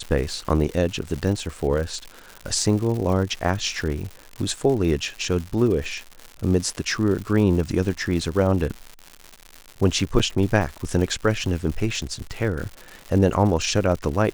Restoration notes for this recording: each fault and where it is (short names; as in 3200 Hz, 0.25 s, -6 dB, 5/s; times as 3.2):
crackle 190/s -29 dBFS
10.19–10.2 gap 7.5 ms